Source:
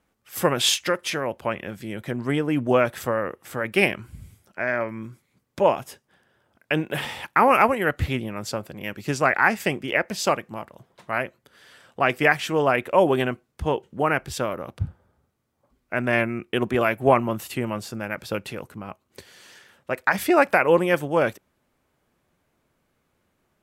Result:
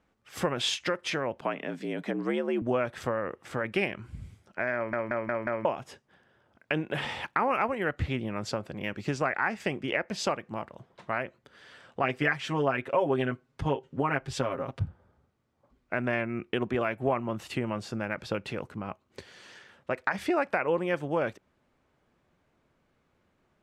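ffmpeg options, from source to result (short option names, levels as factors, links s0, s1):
-filter_complex "[0:a]asettb=1/sr,asplit=3[s0][s1][s2];[s0]atrim=end=1.414[s3];[s1]atrim=start=1.41:end=2.62,asetpts=PTS-STARTPTS,afade=t=in:d=0.004:c=qsin,afade=t=out:st=1.206:d=0.004:c=qsin,afreqshift=66[s4];[s2]atrim=start=2.616[s5];[s3][s4]acrossfade=d=0.004:c1=hsin:c2=qsin[s6];[s6][s5]acrossfade=d=0.004:c1=qsin:c2=hsin,asettb=1/sr,asplit=3[s7][s8][s9];[s7]atrim=end=12.034[s10];[s8]atrim=start=12.03:end=14.84,asetpts=PTS-STARTPTS,afade=t=in:d=0.004:c=qsin,afade=t=out:st=2.806:d=0.004:c=qsin,aecho=1:1:7.4:0.89,atrim=end_sample=123921[s11];[s9]atrim=start=14.836[s12];[s10][s11]acrossfade=d=0.004:c1=hsin:c2=qsin[s13];[s13][s12]acrossfade=d=0.004:c1=qsin:c2=hsin,asplit=6[s14][s15][s16][s17][s18][s19];[s14]atrim=end=4.932[s20];[s15]atrim=start=4.748:end=4.932[s21];[s16]atrim=start=4.748:end=4.932[s22];[s17]atrim=start=4.748:end=4.932[s23];[s18]atrim=start=4.748:end=4.932[s24];[s19]atrim=start=5.648[s25];[s20][s21]acrossfade=d=0.004:c1=hsin:c2=hsin[s26];[s26][s22]acrossfade=d=0.004:c1=hsin:c2=hsin[s27];[s27][s23]acrossfade=d=0.004:c1=hsin:c2=hsin[s28];[s28][s24]acrossfade=d=0.004:c1=hsin:c2=hsin[s29];[s29][s25]acrossfade=d=0.004:c1=hsin:c2=hsin,lowpass=7400,highshelf=f=4600:g=-6.5,acompressor=threshold=0.0398:ratio=2.5"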